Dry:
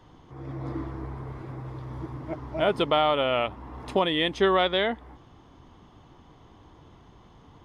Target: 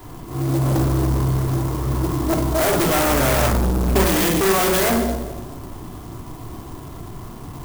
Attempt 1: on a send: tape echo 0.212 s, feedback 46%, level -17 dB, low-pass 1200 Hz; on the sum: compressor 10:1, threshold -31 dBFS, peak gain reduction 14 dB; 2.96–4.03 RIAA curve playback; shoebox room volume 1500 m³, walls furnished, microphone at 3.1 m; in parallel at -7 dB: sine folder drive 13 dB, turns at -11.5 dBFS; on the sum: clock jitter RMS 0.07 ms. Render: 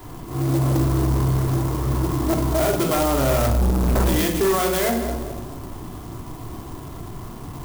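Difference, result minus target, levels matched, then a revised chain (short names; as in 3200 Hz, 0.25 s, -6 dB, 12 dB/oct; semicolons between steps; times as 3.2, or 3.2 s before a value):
compressor: peak gain reduction +9.5 dB
on a send: tape echo 0.212 s, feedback 46%, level -17 dB, low-pass 1200 Hz; on the sum: compressor 10:1, threshold -20.5 dBFS, peak gain reduction 4.5 dB; 2.96–4.03 RIAA curve playback; shoebox room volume 1500 m³, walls furnished, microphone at 3.1 m; in parallel at -7 dB: sine folder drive 13 dB, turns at -11.5 dBFS; on the sum: clock jitter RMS 0.07 ms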